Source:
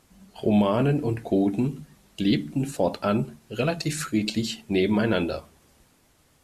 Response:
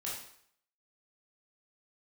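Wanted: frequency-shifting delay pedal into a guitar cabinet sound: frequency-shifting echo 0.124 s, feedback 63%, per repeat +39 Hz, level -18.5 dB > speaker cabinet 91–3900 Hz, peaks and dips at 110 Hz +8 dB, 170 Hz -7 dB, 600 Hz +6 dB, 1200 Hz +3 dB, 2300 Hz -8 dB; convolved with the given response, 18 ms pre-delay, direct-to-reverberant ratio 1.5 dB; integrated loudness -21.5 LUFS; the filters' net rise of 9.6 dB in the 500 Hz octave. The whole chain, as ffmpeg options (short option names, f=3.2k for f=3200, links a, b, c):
-filter_complex "[0:a]equalizer=f=500:t=o:g=8.5,asplit=2[a][b];[1:a]atrim=start_sample=2205,adelay=18[c];[b][c]afir=irnorm=-1:irlink=0,volume=-3dB[d];[a][d]amix=inputs=2:normalize=0,asplit=7[e][f][g][h][i][j][k];[f]adelay=124,afreqshift=39,volume=-18.5dB[l];[g]adelay=248,afreqshift=78,volume=-22.5dB[m];[h]adelay=372,afreqshift=117,volume=-26.5dB[n];[i]adelay=496,afreqshift=156,volume=-30.5dB[o];[j]adelay=620,afreqshift=195,volume=-34.6dB[p];[k]adelay=744,afreqshift=234,volume=-38.6dB[q];[e][l][m][n][o][p][q]amix=inputs=7:normalize=0,highpass=91,equalizer=f=110:t=q:w=4:g=8,equalizer=f=170:t=q:w=4:g=-7,equalizer=f=600:t=q:w=4:g=6,equalizer=f=1.2k:t=q:w=4:g=3,equalizer=f=2.3k:t=q:w=4:g=-8,lowpass=f=3.9k:w=0.5412,lowpass=f=3.9k:w=1.3066,volume=-3dB"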